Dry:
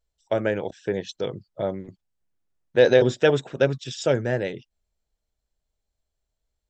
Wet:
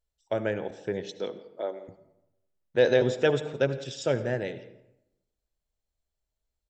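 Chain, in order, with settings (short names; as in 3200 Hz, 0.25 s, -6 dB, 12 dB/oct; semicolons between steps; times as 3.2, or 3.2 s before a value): 1.03–1.87 HPF 160 Hz -> 390 Hz 24 dB/oct; echo 0.168 s -22.5 dB; reverb RT60 0.90 s, pre-delay 66 ms, DRR 13 dB; gain -5 dB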